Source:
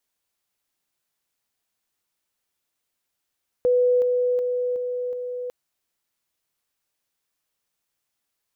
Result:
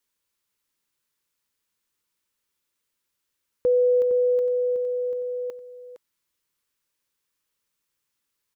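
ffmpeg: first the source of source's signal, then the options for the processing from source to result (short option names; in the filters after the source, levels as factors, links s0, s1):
-f lavfi -i "aevalsrc='pow(10,(-15.5-3*floor(t/0.37))/20)*sin(2*PI*495*t)':d=1.85:s=44100"
-filter_complex "[0:a]asuperstop=centerf=710:order=4:qfactor=3,asplit=2[s0][s1];[s1]aecho=0:1:461:0.266[s2];[s0][s2]amix=inputs=2:normalize=0"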